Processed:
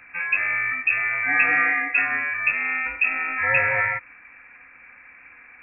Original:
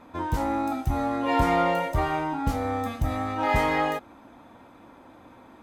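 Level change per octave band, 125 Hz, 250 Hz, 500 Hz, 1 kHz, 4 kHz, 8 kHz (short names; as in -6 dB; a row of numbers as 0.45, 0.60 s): -13.0 dB, -14.5 dB, -8.0 dB, -5.0 dB, under -15 dB, under -35 dB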